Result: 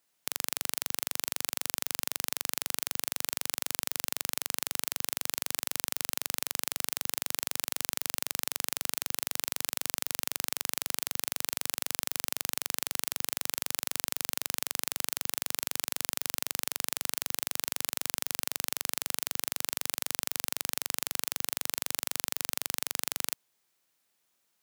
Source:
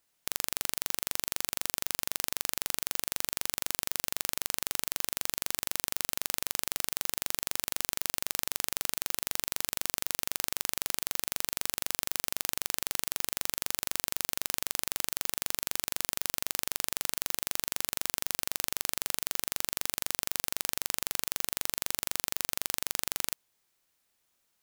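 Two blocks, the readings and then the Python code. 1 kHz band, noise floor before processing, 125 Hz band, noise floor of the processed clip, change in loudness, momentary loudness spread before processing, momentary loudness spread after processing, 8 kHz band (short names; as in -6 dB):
0.0 dB, -76 dBFS, -2.5 dB, -76 dBFS, 0.0 dB, 0 LU, 0 LU, 0.0 dB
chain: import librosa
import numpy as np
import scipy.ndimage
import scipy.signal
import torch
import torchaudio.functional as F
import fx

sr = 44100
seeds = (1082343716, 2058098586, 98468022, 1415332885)

y = scipy.signal.sosfilt(scipy.signal.butter(2, 110.0, 'highpass', fs=sr, output='sos'), x)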